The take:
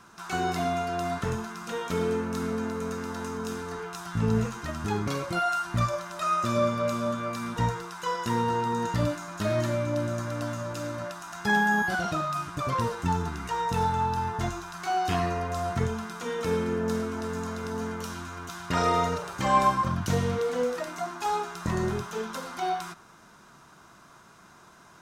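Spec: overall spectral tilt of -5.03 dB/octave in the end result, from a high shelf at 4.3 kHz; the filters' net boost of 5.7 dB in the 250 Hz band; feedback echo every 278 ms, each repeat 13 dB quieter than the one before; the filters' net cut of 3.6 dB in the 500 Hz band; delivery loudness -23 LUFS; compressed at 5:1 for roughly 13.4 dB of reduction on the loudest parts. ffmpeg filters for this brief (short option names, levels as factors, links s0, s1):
-af "equalizer=f=250:t=o:g=8.5,equalizer=f=500:t=o:g=-7,highshelf=f=4300:g=4,acompressor=threshold=0.0224:ratio=5,aecho=1:1:278|556|834:0.224|0.0493|0.0108,volume=4.47"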